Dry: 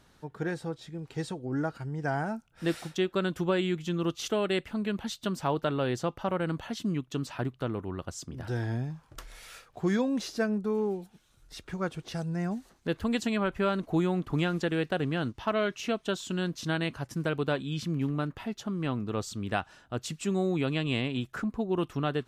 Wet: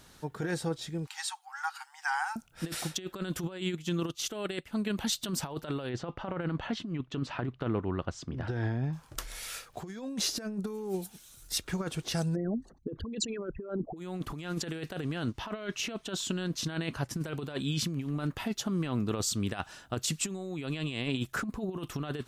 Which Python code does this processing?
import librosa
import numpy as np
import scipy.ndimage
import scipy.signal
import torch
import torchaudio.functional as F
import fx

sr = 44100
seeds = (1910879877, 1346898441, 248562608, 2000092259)

y = fx.brickwall_highpass(x, sr, low_hz=740.0, at=(1.07, 2.36))
y = fx.upward_expand(y, sr, threshold_db=-47.0, expansion=1.5, at=(3.64, 4.96), fade=0.02)
y = fx.lowpass(y, sr, hz=2700.0, slope=12, at=(5.89, 8.93))
y = fx.high_shelf(y, sr, hz=5300.0, db=10.5, at=(10.67, 11.58))
y = fx.envelope_sharpen(y, sr, power=3.0, at=(12.34, 13.96), fade=0.02)
y = fx.high_shelf(y, sr, hz=5700.0, db=-7.5, at=(15.23, 17.21))
y = fx.high_shelf(y, sr, hz=4200.0, db=9.5)
y = fx.over_compress(y, sr, threshold_db=-32.0, ratio=-0.5)